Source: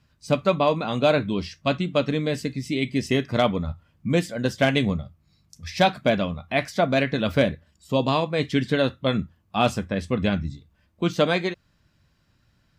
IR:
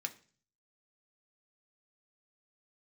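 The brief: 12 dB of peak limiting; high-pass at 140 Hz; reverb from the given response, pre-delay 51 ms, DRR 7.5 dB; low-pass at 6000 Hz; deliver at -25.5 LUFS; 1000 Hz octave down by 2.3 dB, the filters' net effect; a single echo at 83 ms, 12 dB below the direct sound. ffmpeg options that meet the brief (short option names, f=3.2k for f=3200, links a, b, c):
-filter_complex "[0:a]highpass=140,lowpass=6k,equalizer=f=1k:t=o:g=-3.5,alimiter=limit=-18.5dB:level=0:latency=1,aecho=1:1:83:0.251,asplit=2[a][b];[1:a]atrim=start_sample=2205,adelay=51[c];[b][c]afir=irnorm=-1:irlink=0,volume=-7dB[d];[a][d]amix=inputs=2:normalize=0,volume=4.5dB"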